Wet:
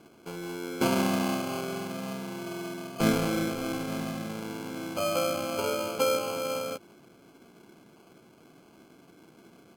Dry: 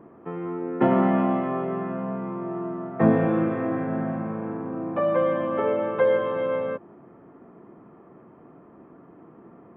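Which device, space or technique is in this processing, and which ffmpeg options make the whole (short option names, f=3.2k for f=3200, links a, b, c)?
crushed at another speed: -af "asetrate=55125,aresample=44100,acrusher=samples=19:mix=1:aa=0.000001,asetrate=35280,aresample=44100,volume=-6dB"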